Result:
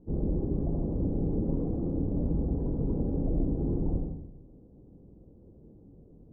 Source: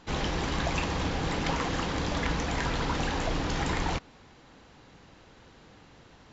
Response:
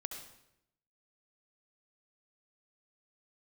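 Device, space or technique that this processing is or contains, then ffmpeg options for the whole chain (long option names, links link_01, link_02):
next room: -filter_complex "[0:a]lowpass=frequency=430:width=0.5412,lowpass=frequency=430:width=1.3066[link_01];[1:a]atrim=start_sample=2205[link_02];[link_01][link_02]afir=irnorm=-1:irlink=0,volume=5dB"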